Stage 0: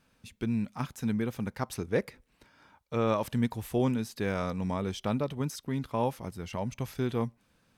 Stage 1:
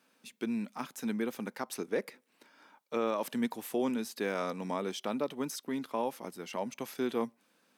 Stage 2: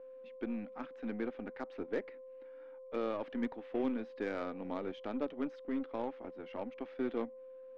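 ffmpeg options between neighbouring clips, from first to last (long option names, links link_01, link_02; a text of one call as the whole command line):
ffmpeg -i in.wav -af "highpass=frequency=230:width=0.5412,highpass=frequency=230:width=1.3066,highshelf=frequency=11000:gain=4.5,alimiter=limit=-21dB:level=0:latency=1:release=157" out.wav
ffmpeg -i in.wav -af "aeval=exprs='val(0)+0.00708*sin(2*PI*520*n/s)':channel_layout=same,highpass=220,equalizer=frequency=280:width_type=q:width=4:gain=7,equalizer=frequency=1000:width_type=q:width=4:gain=-6,equalizer=frequency=2500:width_type=q:width=4:gain=-3,lowpass=frequency=2700:width=0.5412,lowpass=frequency=2700:width=1.3066,aeval=exprs='0.1*(cos(1*acos(clip(val(0)/0.1,-1,1)))-cos(1*PI/2))+0.00631*(cos(3*acos(clip(val(0)/0.1,-1,1)))-cos(3*PI/2))+0.00398*(cos(8*acos(clip(val(0)/0.1,-1,1)))-cos(8*PI/2))':channel_layout=same,volume=-3.5dB" out.wav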